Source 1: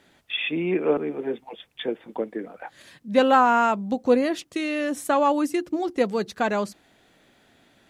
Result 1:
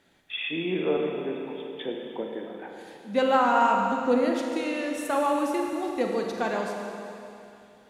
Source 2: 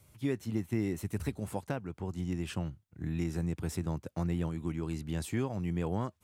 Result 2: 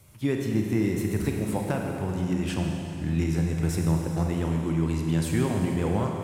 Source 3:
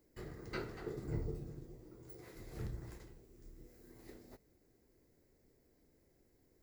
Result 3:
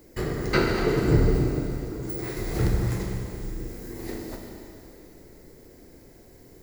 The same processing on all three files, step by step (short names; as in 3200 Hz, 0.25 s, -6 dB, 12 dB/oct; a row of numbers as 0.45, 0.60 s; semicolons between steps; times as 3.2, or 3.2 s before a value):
Schroeder reverb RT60 2.8 s, combs from 33 ms, DRR 1 dB; match loudness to -27 LUFS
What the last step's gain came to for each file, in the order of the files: -6.0, +6.0, +19.0 dB